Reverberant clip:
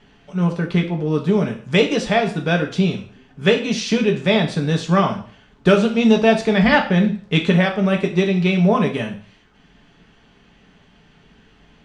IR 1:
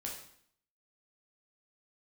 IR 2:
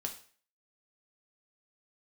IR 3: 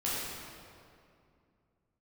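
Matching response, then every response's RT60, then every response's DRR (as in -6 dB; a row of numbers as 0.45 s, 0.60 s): 2; 0.60 s, 0.45 s, 2.4 s; -2.0 dB, 2.5 dB, -8.5 dB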